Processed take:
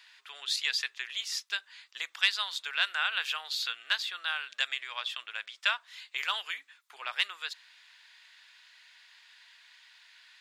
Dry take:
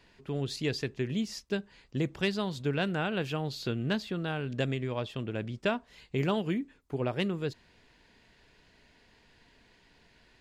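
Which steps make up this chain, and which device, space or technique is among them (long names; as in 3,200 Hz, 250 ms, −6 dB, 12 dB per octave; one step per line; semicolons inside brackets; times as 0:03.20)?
headphones lying on a table (high-pass filter 1,200 Hz 24 dB per octave; parametric band 3,600 Hz +5.5 dB 0.27 octaves)
level +7 dB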